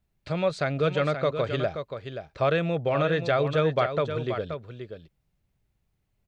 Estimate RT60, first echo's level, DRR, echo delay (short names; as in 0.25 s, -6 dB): none, -8.5 dB, none, 0.528 s